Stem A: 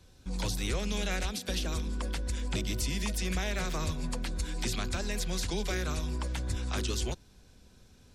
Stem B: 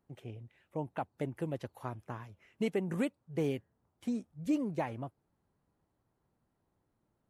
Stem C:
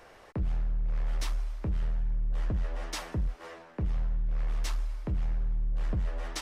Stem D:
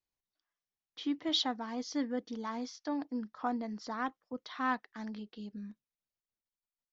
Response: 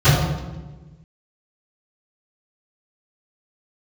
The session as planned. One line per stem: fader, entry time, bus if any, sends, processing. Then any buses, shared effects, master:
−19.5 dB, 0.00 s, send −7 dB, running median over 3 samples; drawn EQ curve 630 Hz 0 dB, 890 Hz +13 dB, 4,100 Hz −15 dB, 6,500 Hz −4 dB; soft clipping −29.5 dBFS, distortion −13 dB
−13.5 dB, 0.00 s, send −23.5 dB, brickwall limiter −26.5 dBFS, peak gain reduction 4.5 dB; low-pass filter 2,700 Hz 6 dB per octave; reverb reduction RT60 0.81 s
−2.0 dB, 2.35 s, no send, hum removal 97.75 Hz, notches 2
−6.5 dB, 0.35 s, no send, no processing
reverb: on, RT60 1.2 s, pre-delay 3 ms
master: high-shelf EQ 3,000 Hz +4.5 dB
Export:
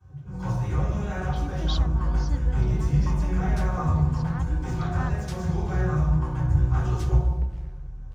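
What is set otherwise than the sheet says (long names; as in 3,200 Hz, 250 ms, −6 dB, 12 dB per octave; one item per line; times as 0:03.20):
stem A: missing soft clipping −29.5 dBFS, distortion −13 dB
stem C −2.0 dB → −10.0 dB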